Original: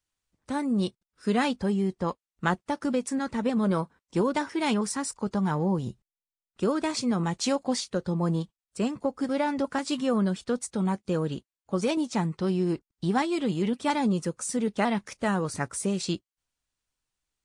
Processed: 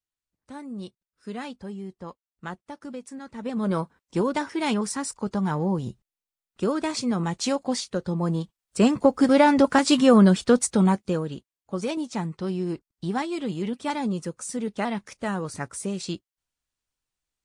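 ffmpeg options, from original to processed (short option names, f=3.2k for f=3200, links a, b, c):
-af "volume=10dB,afade=t=in:st=3.33:d=0.43:silence=0.281838,afade=t=in:st=8.42:d=0.51:silence=0.354813,afade=t=out:st=10.65:d=0.6:silence=0.251189"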